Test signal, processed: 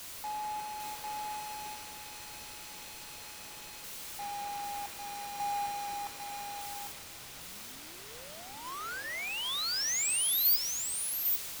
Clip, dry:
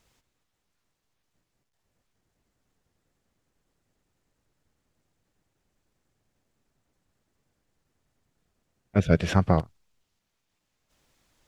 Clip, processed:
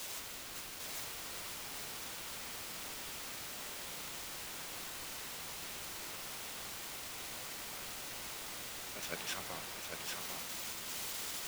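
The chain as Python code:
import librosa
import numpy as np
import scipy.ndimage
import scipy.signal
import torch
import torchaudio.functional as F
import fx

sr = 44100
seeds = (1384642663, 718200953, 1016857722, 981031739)

p1 = x + 0.5 * 10.0 ** (-31.5 / 20.0) * np.sign(x)
p2 = np.diff(p1, prepend=0.0)
p3 = fx.level_steps(p2, sr, step_db=20)
p4 = p2 + (p3 * librosa.db_to_amplitude(0.0))
p5 = fx.quant_dither(p4, sr, seeds[0], bits=6, dither='triangular')
p6 = fx.high_shelf(p5, sr, hz=6300.0, db=-9.0)
p7 = fx.notch(p6, sr, hz=1700.0, q=28.0)
p8 = p7 + fx.echo_single(p7, sr, ms=800, db=-4.0, dry=0)
p9 = fx.band_widen(p8, sr, depth_pct=40)
y = p9 * librosa.db_to_amplitude(-6.0)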